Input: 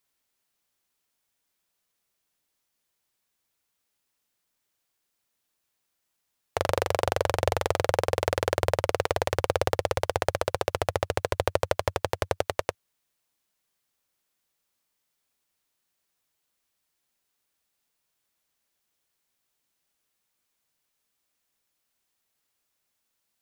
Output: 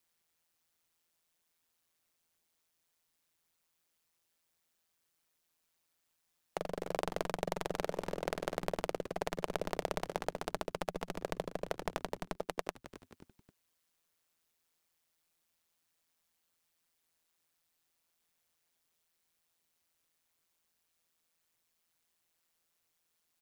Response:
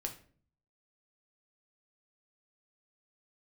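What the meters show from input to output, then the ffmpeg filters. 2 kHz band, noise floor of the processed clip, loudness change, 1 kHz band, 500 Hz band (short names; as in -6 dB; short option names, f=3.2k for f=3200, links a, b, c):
-11.5 dB, -81 dBFS, -11.5 dB, -11.0 dB, -11.5 dB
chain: -filter_complex "[0:a]asplit=4[a][b][c][d];[b]adelay=266,afreqshift=-130,volume=-17dB[e];[c]adelay=532,afreqshift=-260,volume=-25.9dB[f];[d]adelay=798,afreqshift=-390,volume=-34.7dB[g];[a][e][f][g]amix=inputs=4:normalize=0,alimiter=limit=-16.5dB:level=0:latency=1:release=401,aeval=exprs='val(0)*sin(2*PI*83*n/s)':c=same,volume=1.5dB"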